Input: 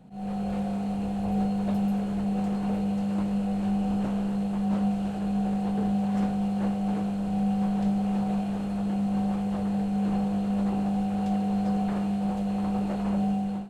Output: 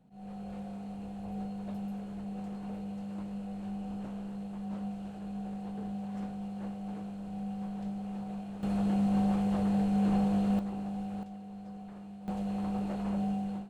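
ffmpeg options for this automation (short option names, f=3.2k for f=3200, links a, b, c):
-af "asetnsamples=n=441:p=0,asendcmd='8.63 volume volume -1dB;10.59 volume volume -10dB;11.23 volume volume -18.5dB;12.28 volume volume -6dB',volume=-12dB"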